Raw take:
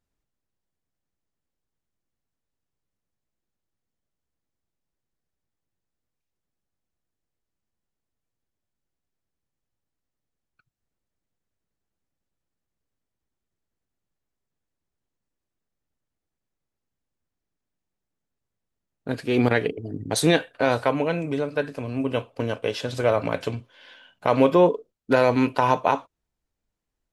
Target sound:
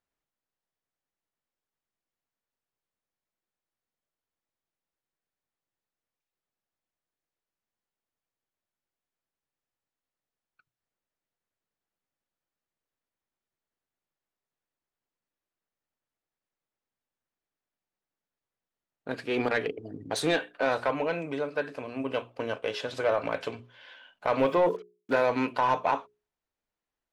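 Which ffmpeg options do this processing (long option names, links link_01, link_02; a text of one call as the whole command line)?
ffmpeg -i in.wav -filter_complex "[0:a]asettb=1/sr,asplit=3[link_01][link_02][link_03];[link_01]atrim=end=24.394[link_04];[link_02]atrim=start=24.39:end=25.26,asetpts=PTS-STARTPTS,afade=type=in:duration=0.004:curve=qsin,afade=type=out:start_time=0.866:duration=0.004:curve=qsin,acrusher=bits=7:mix=0:aa=0.5[link_05];[link_03]atrim=start=25.256[link_06];[link_04][link_05]acrossfade=duration=0.004:curve1=hsin:curve2=qsin[link_07];[link_07][link_06]acrossfade=duration=0.004:curve1=qsin:curve2=hsin,asplit=2[link_08][link_09];[link_09]highpass=frequency=720:poles=1,volume=15dB,asoftclip=type=tanh:threshold=-4.5dB[link_10];[link_08][link_10]amix=inputs=2:normalize=0,lowpass=frequency=2600:poles=1,volume=-6dB,bandreject=frequency=60:width_type=h:width=6,bandreject=frequency=120:width_type=h:width=6,bandreject=frequency=180:width_type=h:width=6,bandreject=frequency=240:width_type=h:width=6,bandreject=frequency=300:width_type=h:width=6,bandreject=frequency=360:width_type=h:width=6,bandreject=frequency=420:width_type=h:width=6,volume=-9dB" out.wav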